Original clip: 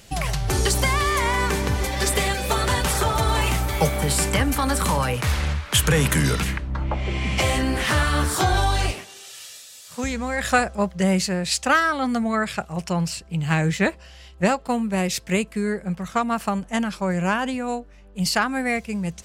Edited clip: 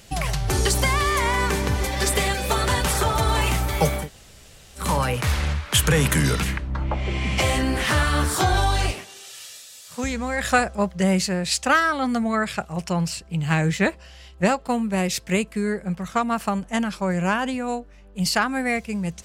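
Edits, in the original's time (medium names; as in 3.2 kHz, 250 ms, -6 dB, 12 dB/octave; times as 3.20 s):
4.02–4.83 s: room tone, crossfade 0.16 s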